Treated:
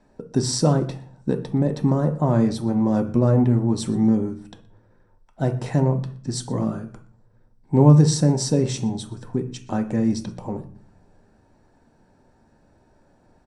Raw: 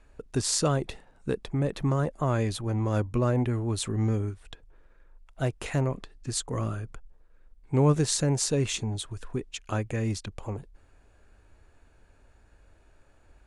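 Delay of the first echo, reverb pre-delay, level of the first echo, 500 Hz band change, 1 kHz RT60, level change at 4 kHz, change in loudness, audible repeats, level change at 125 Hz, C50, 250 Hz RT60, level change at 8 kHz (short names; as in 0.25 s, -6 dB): 0.121 s, 3 ms, -22.0 dB, +5.5 dB, 0.45 s, +1.5 dB, +7.0 dB, 1, +7.0 dB, 12.0 dB, 0.75 s, 0.0 dB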